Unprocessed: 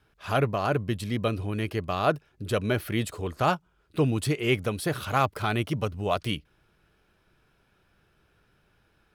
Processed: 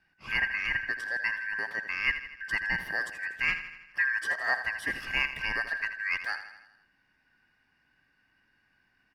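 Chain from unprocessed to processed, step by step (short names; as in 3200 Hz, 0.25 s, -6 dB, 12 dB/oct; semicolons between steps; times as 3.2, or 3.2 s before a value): four-band scrambler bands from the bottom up 2143; LPF 3400 Hz 6 dB/oct; on a send: feedback echo 81 ms, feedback 57%, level -11.5 dB; on the sum: gain -3.5 dB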